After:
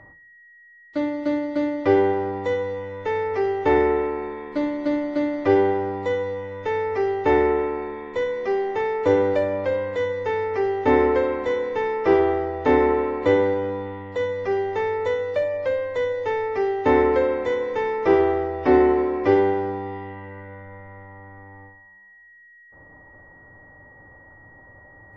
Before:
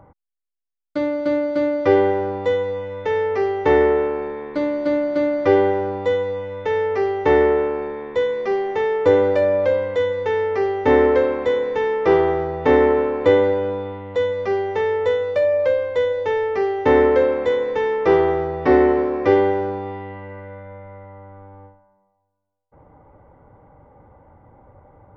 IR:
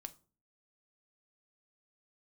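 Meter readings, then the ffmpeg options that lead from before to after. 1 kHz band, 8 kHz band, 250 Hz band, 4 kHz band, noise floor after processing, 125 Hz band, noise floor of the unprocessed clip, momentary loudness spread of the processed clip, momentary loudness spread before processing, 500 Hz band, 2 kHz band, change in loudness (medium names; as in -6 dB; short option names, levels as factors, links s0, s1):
-1.5 dB, no reading, -1.0 dB, -4.0 dB, -50 dBFS, -2.5 dB, -72 dBFS, 11 LU, 10 LU, -3.5 dB, -2.5 dB, -3.0 dB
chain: -filter_complex "[0:a]aeval=exprs='val(0)+0.00501*sin(2*PI*1900*n/s)':c=same[s0];[1:a]atrim=start_sample=2205[s1];[s0][s1]afir=irnorm=-1:irlink=0,volume=1.33" -ar 32000 -c:a aac -b:a 48k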